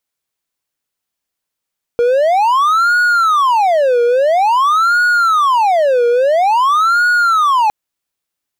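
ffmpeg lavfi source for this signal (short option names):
-f lavfi -i "aevalsrc='0.447*(1-4*abs(mod((962.5*t-487.5/(2*PI*0.49)*sin(2*PI*0.49*t))+0.25,1)-0.5))':d=5.71:s=44100"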